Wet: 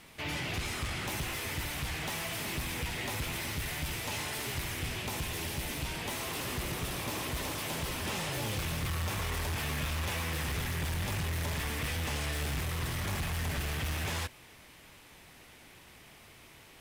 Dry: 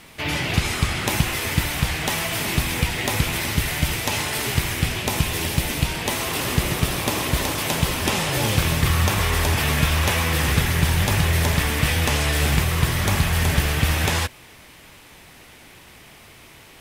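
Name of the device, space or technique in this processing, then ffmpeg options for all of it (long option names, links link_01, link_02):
saturation between pre-emphasis and de-emphasis: -af "highshelf=frequency=8000:gain=9,asoftclip=type=tanh:threshold=-21dB,highshelf=frequency=8000:gain=-9,volume=-8.5dB"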